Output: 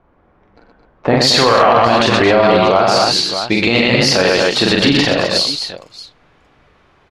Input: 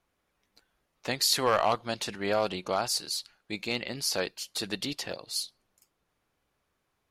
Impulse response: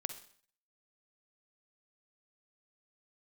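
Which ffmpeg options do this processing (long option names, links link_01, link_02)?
-af "asetnsamples=nb_out_samples=441:pad=0,asendcmd='1.17 lowpass f 3300',lowpass=1100,aecho=1:1:43|92|122|220|256|627:0.708|0.266|0.668|0.335|0.422|0.15,alimiter=level_in=23.5dB:limit=-1dB:release=50:level=0:latency=1,volume=-1dB"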